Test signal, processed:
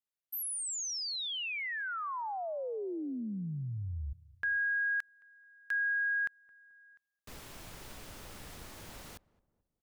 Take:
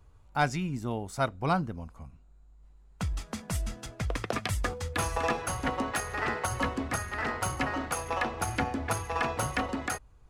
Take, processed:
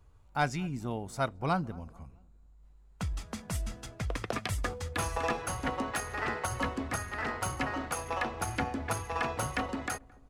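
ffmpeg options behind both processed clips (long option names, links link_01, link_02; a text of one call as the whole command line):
ffmpeg -i in.wav -filter_complex "[0:a]asplit=2[link_01][link_02];[link_02]adelay=218,lowpass=frequency=950:poles=1,volume=-21.5dB,asplit=2[link_03][link_04];[link_04]adelay=218,lowpass=frequency=950:poles=1,volume=0.49,asplit=2[link_05][link_06];[link_06]adelay=218,lowpass=frequency=950:poles=1,volume=0.49[link_07];[link_01][link_03][link_05][link_07]amix=inputs=4:normalize=0,volume=-2.5dB" out.wav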